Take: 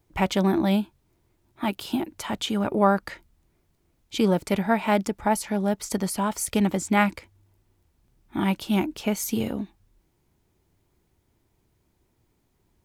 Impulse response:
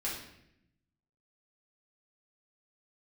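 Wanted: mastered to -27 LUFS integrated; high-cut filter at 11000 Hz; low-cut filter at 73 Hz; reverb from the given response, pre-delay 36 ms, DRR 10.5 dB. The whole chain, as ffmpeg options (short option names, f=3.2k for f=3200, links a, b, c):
-filter_complex "[0:a]highpass=73,lowpass=11k,asplit=2[a][b];[1:a]atrim=start_sample=2205,adelay=36[c];[b][c]afir=irnorm=-1:irlink=0,volume=-14dB[d];[a][d]amix=inputs=2:normalize=0,volume=-2dB"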